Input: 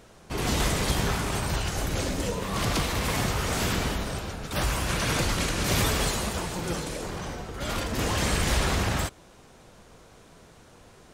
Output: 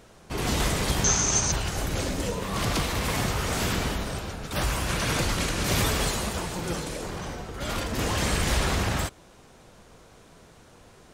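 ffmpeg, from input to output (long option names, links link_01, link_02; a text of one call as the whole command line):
ffmpeg -i in.wav -filter_complex "[0:a]asettb=1/sr,asplit=3[link_01][link_02][link_03];[link_01]atrim=end=1.044[link_04];[link_02]atrim=start=1.04:end=1.52,asetpts=PTS-STARTPTS,afade=type=in:duration=0.004:curve=qsin,afade=type=out:start_time=0.476:duration=0.004:curve=qsin,lowpass=frequency=6300:width_type=q:width=16[link_05];[link_03]atrim=start=1.516[link_06];[link_04][link_05]acrossfade=duration=0.004:curve1=hsin:curve2=qsin[link_07];[link_07][link_06]acrossfade=duration=0.004:curve1=qsin:curve2=hsin" out.wav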